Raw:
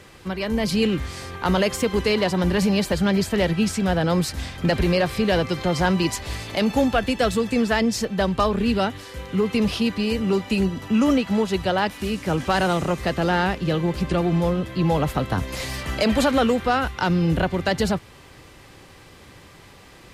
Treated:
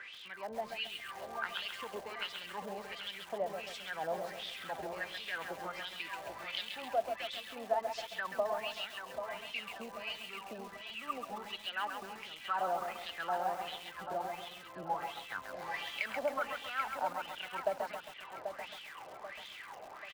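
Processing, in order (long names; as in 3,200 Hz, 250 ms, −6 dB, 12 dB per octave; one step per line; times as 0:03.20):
downward compressor 2.5 to 1, threshold −41 dBFS, peak gain reduction 16.5 dB
LFO wah 1.4 Hz 640–3,500 Hz, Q 7.5
on a send: repeating echo 787 ms, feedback 41%, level −8 dB
on the sum: feedback echo at a low word length 134 ms, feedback 55%, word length 10 bits, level −6 dB
level +11.5 dB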